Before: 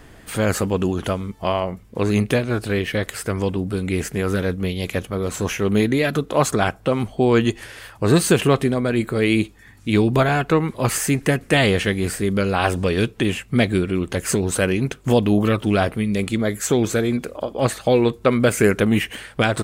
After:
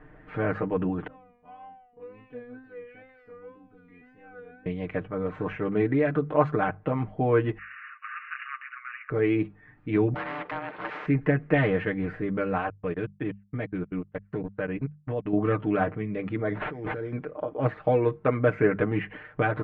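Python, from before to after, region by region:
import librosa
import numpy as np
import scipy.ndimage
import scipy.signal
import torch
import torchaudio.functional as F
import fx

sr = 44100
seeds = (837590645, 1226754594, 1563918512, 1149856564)

y = fx.chain(x, sr, fx.low_shelf(hz=150.0, db=8.5),
    fx.comb_fb(f0_hz=250.0, decay_s=0.71, harmonics='all', damping=0.0, mix_pct=100),
    fx.wow_flutter(seeds[0], rate_hz=2.1, depth_cents=68.0), at=(1.07, 4.66))
y = fx.chain(y, sr, fx.brickwall_bandpass(low_hz=1100.0, high_hz=2900.0),
    fx.spectral_comp(ratio=2.0), at=(7.58, 9.1))
y = fx.chain(y, sr, fx.ring_mod(carrier_hz=450.0),
    fx.bandpass_edges(low_hz=490.0, high_hz=5100.0),
    fx.spectral_comp(ratio=4.0), at=(10.14, 11.06))
y = fx.chain(y, sr, fx.level_steps(step_db=21),
    fx.upward_expand(threshold_db=-39.0, expansion=2.5), at=(12.58, 15.33))
y = fx.chain(y, sr, fx.resample_bad(factor=8, down='none', up='hold'),
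    fx.over_compress(threshold_db=-26.0, ratio=-1.0), at=(16.49, 17.13))
y = scipy.signal.sosfilt(scipy.signal.butter(4, 2000.0, 'lowpass', fs=sr, output='sos'), y)
y = fx.hum_notches(y, sr, base_hz=50, count=4)
y = y + 0.79 * np.pad(y, (int(6.6 * sr / 1000.0), 0))[:len(y)]
y = F.gain(torch.from_numpy(y), -7.5).numpy()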